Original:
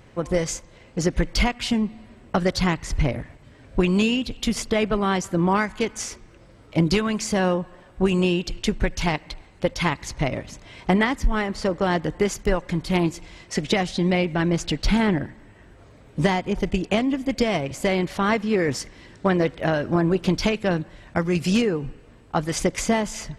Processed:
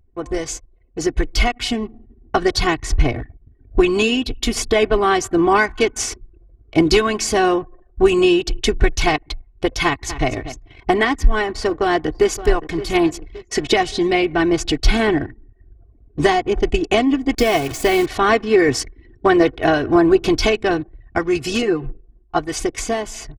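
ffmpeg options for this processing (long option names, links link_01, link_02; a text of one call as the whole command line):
ffmpeg -i in.wav -filter_complex "[0:a]asplit=2[link_01][link_02];[link_02]afade=type=in:start_time=9.85:duration=0.01,afade=type=out:start_time=10.28:duration=0.01,aecho=0:1:240|480:0.237137|0.0237137[link_03];[link_01][link_03]amix=inputs=2:normalize=0,asplit=2[link_04][link_05];[link_05]afade=type=in:start_time=11.52:duration=0.01,afade=type=out:start_time=12.36:duration=0.01,aecho=0:1:570|1140|1710|2280:0.199526|0.0897868|0.0404041|0.0181818[link_06];[link_04][link_06]amix=inputs=2:normalize=0,asplit=3[link_07][link_08][link_09];[link_07]afade=type=out:start_time=17.33:duration=0.02[link_10];[link_08]acrusher=bits=7:dc=4:mix=0:aa=0.000001,afade=type=in:start_time=17.33:duration=0.02,afade=type=out:start_time=18.05:duration=0.02[link_11];[link_09]afade=type=in:start_time=18.05:duration=0.02[link_12];[link_10][link_11][link_12]amix=inputs=3:normalize=0,asettb=1/sr,asplit=3[link_13][link_14][link_15];[link_13]atrim=end=21.624[link_16];[link_14]atrim=start=21.62:end=22.39,asetpts=PTS-STARTPTS,afade=type=in:duration=0.004:curve=qsin,afade=type=out:start_time=0.766:duration=0.004:curve=qsin,aecho=1:1:5.7:0.76,atrim=end_sample=33957[link_17];[link_15]atrim=start=22.386[link_18];[link_16][link_17]acrossfade=duration=0.004:curve1=hsin:curve2=qsin[link_19];[link_19][link_18]acrossfade=duration=0.004:curve1=qsin:curve2=hsin,anlmdn=0.631,aecho=1:1:2.7:0.81,dynaudnorm=framelen=100:gausssize=31:maxgain=11.5dB,volume=-1dB" out.wav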